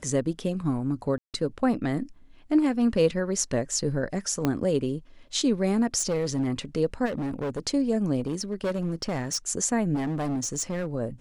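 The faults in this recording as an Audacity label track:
1.180000	1.340000	dropout 158 ms
4.450000	4.450000	pop -11 dBFS
5.980000	6.480000	clipped -21.5 dBFS
7.050000	7.600000	clipped -26.5 dBFS
8.210000	9.380000	clipped -23.5 dBFS
9.940000	10.860000	clipped -25 dBFS

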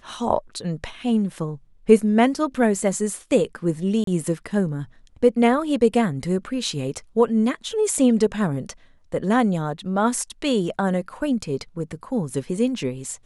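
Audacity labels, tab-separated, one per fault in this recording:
4.040000	4.070000	dropout 33 ms

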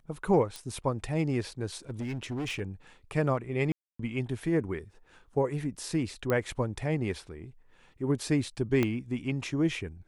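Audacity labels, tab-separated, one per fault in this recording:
0.560000	0.560000	pop
1.900000	2.610000	clipped -30.5 dBFS
3.720000	3.990000	dropout 274 ms
6.300000	6.300000	pop -16 dBFS
8.830000	8.830000	pop -14 dBFS

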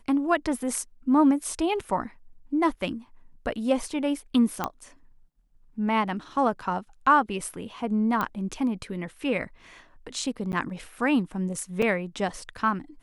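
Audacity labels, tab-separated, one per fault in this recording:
4.640000	4.640000	pop -12 dBFS
8.210000	8.210000	pop -14 dBFS
10.520000	10.530000	dropout 9.9 ms
11.820000	11.820000	dropout 4.8 ms

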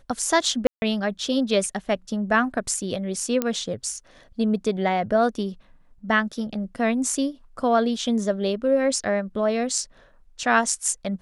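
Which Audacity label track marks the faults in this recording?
0.670000	0.820000	dropout 150 ms
3.420000	3.420000	pop -9 dBFS

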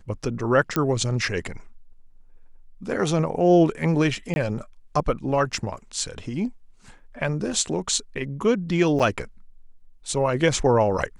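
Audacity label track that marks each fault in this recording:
0.760000	0.760000	pop -8 dBFS
4.340000	4.360000	dropout 21 ms
5.580000	5.580000	dropout 2.8 ms
8.990000	9.000000	dropout 6.7 ms

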